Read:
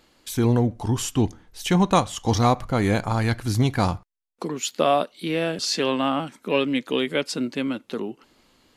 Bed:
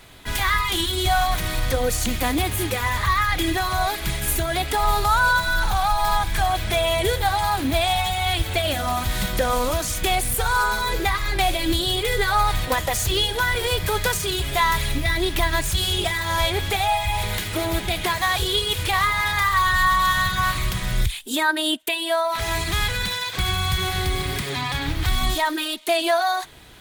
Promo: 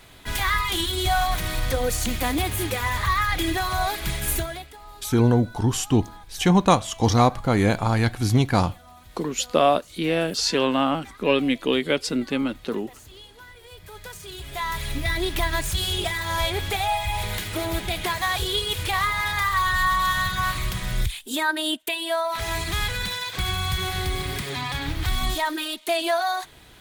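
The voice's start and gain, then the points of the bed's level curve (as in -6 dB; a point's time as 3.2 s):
4.75 s, +1.5 dB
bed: 4.39 s -2 dB
4.79 s -24.5 dB
13.58 s -24.5 dB
15.06 s -3 dB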